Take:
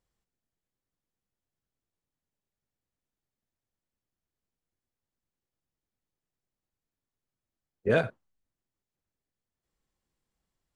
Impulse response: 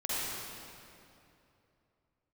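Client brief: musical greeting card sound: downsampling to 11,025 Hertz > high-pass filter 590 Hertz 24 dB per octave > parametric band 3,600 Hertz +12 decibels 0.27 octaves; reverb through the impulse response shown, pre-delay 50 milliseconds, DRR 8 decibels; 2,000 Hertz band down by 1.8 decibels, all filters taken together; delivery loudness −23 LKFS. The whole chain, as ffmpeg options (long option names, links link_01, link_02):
-filter_complex "[0:a]equalizer=frequency=2000:width_type=o:gain=-3,asplit=2[link_01][link_02];[1:a]atrim=start_sample=2205,adelay=50[link_03];[link_02][link_03]afir=irnorm=-1:irlink=0,volume=-15dB[link_04];[link_01][link_04]amix=inputs=2:normalize=0,aresample=11025,aresample=44100,highpass=frequency=590:width=0.5412,highpass=frequency=590:width=1.3066,equalizer=frequency=3600:width_type=o:width=0.27:gain=12,volume=11.5dB"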